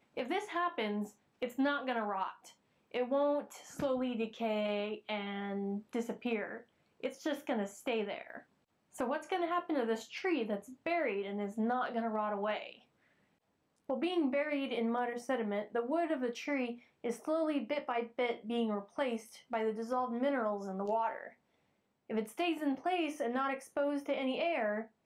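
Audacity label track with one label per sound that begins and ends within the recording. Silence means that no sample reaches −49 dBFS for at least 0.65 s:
13.890000	21.300000	sound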